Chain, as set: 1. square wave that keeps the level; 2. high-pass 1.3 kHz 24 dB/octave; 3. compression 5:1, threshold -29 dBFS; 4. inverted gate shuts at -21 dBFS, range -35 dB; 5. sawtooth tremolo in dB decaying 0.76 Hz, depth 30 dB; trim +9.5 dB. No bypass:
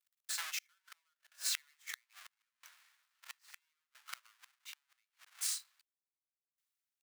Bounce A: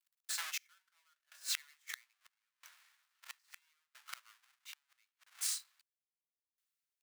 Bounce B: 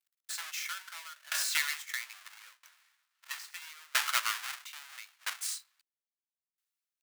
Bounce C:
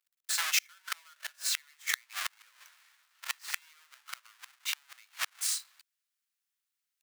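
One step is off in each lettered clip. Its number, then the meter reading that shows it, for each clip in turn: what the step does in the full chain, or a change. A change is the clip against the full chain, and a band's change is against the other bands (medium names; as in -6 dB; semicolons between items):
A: 3, mean gain reduction 3.0 dB; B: 4, momentary loudness spread change -6 LU; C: 5, momentary loudness spread change -6 LU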